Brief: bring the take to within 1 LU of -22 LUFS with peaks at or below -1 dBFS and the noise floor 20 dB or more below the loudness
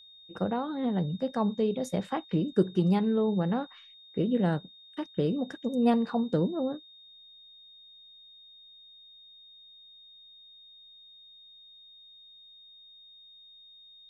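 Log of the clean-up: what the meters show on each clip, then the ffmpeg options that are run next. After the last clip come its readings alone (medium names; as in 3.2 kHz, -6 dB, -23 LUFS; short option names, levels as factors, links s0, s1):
steady tone 3.7 kHz; tone level -51 dBFS; loudness -29.0 LUFS; peak level -13.0 dBFS; loudness target -22.0 LUFS
-> -af "bandreject=f=3700:w=30"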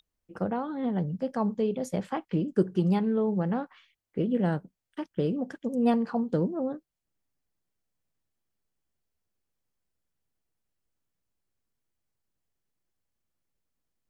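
steady tone not found; loudness -29.0 LUFS; peak level -13.0 dBFS; loudness target -22.0 LUFS
-> -af "volume=2.24"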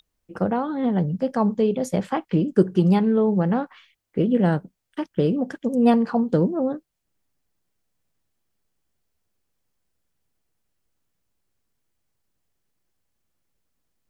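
loudness -22.0 LUFS; peak level -6.0 dBFS; noise floor -79 dBFS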